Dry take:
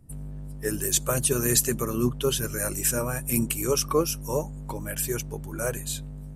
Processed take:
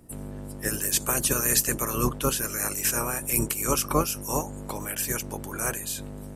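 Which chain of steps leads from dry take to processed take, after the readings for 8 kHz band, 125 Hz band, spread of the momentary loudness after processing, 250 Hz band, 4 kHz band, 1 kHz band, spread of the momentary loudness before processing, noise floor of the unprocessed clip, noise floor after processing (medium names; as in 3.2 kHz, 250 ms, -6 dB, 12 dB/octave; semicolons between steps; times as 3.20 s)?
+1.0 dB, -3.0 dB, 12 LU, -2.0 dB, -0.5 dB, +4.0 dB, 12 LU, -38 dBFS, -39 dBFS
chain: spectral peaks clipped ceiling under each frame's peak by 17 dB; dynamic bell 3.6 kHz, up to -5 dB, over -43 dBFS, Q 2.2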